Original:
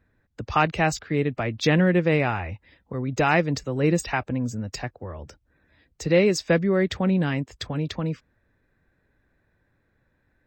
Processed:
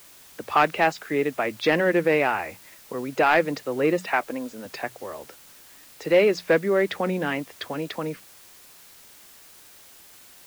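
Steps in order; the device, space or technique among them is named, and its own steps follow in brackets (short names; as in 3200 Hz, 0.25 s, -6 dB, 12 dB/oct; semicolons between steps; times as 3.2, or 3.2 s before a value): notches 60/120/180 Hz; 4.06–4.66 HPF 230 Hz 12 dB/oct; tape answering machine (BPF 350–3000 Hz; soft clip -12 dBFS, distortion -20 dB; wow and flutter; white noise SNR 24 dB); gain +4 dB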